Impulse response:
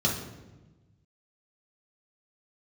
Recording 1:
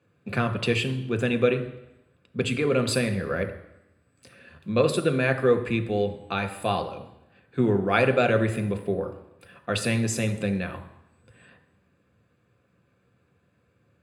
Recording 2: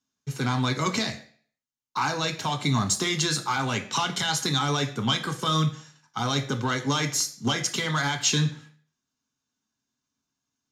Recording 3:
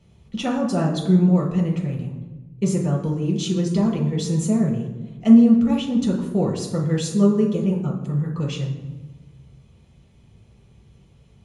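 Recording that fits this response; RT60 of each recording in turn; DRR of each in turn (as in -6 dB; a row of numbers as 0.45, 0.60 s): 3; 0.85, 0.50, 1.1 s; 7.5, 6.0, -4.0 dB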